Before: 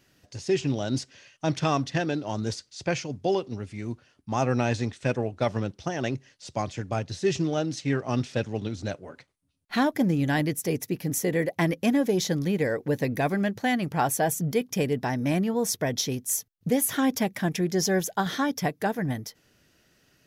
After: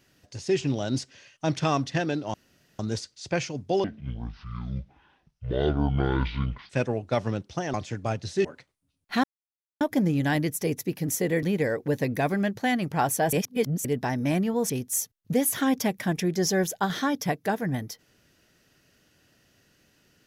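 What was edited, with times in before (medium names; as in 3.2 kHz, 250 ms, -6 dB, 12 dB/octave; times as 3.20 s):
2.34 s: insert room tone 0.45 s
3.39–4.99 s: speed 56%
6.03–6.60 s: delete
7.31–9.05 s: delete
9.84 s: insert silence 0.57 s
11.46–12.43 s: delete
14.33–14.85 s: reverse
15.70–16.06 s: delete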